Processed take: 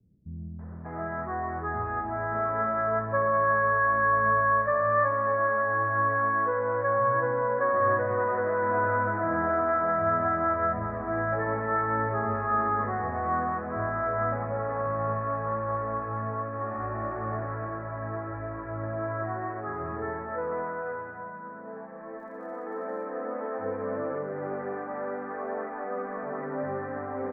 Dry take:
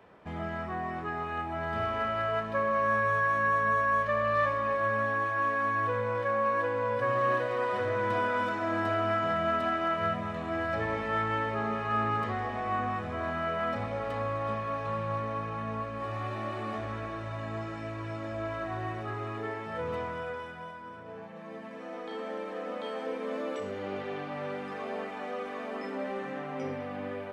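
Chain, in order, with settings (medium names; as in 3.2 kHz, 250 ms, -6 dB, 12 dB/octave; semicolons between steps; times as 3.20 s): steep low-pass 1.8 kHz 48 dB/octave; 21.59–22.50 s: crackle 130 per s -62 dBFS; bands offset in time lows, highs 590 ms, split 210 Hz; trim +3.5 dB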